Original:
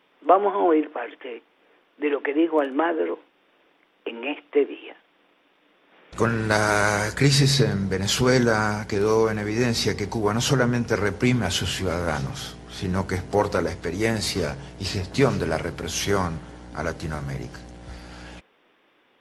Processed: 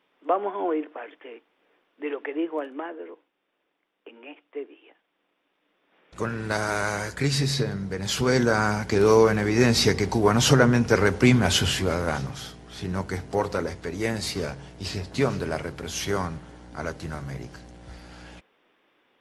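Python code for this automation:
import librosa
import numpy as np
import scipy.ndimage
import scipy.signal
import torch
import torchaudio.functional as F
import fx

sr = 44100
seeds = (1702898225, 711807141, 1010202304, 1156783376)

y = fx.gain(x, sr, db=fx.line((2.45, -7.0), (3.04, -14.5), (4.82, -14.5), (6.49, -6.0), (7.92, -6.0), (9.03, 3.0), (11.62, 3.0), (12.41, -4.0)))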